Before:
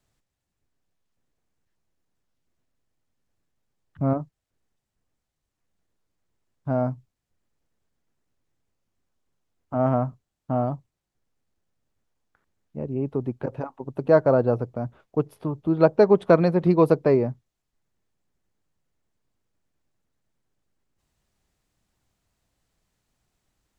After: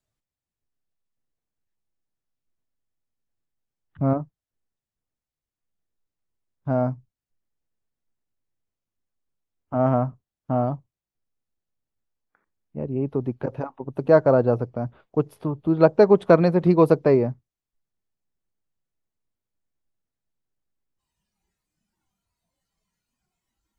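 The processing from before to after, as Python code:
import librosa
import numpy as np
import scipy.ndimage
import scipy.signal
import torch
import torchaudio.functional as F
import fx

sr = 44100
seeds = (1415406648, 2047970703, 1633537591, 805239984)

y = fx.noise_reduce_blind(x, sr, reduce_db=12)
y = y * librosa.db_to_amplitude(1.5)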